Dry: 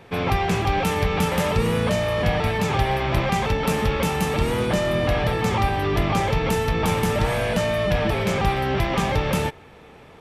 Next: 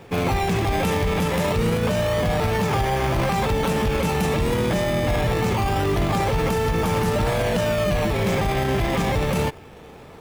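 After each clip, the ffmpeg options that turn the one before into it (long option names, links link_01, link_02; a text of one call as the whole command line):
ffmpeg -i in.wav -filter_complex "[0:a]asplit=2[link_01][link_02];[link_02]acrusher=samples=21:mix=1:aa=0.000001:lfo=1:lforange=21:lforate=0.26,volume=-4dB[link_03];[link_01][link_03]amix=inputs=2:normalize=0,alimiter=limit=-13.5dB:level=0:latency=1:release=16" out.wav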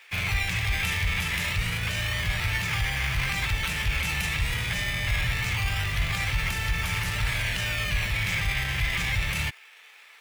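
ffmpeg -i in.wav -filter_complex "[0:a]acrossover=split=130[link_01][link_02];[link_01]acrusher=bits=5:mix=0:aa=0.5[link_03];[link_02]highpass=frequency=2100:width_type=q:width=2[link_04];[link_03][link_04]amix=inputs=2:normalize=0,volume=-1.5dB" out.wav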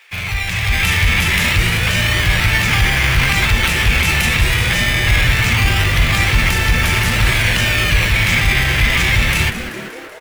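ffmpeg -i in.wav -filter_complex "[0:a]dynaudnorm=framelen=140:gausssize=9:maxgain=8dB,asplit=2[link_01][link_02];[link_02]asplit=8[link_03][link_04][link_05][link_06][link_07][link_08][link_09][link_10];[link_03]adelay=191,afreqshift=-140,volume=-11.5dB[link_11];[link_04]adelay=382,afreqshift=-280,volume=-15.5dB[link_12];[link_05]adelay=573,afreqshift=-420,volume=-19.5dB[link_13];[link_06]adelay=764,afreqshift=-560,volume=-23.5dB[link_14];[link_07]adelay=955,afreqshift=-700,volume=-27.6dB[link_15];[link_08]adelay=1146,afreqshift=-840,volume=-31.6dB[link_16];[link_09]adelay=1337,afreqshift=-980,volume=-35.6dB[link_17];[link_10]adelay=1528,afreqshift=-1120,volume=-39.6dB[link_18];[link_11][link_12][link_13][link_14][link_15][link_16][link_17][link_18]amix=inputs=8:normalize=0[link_19];[link_01][link_19]amix=inputs=2:normalize=0,volume=4.5dB" out.wav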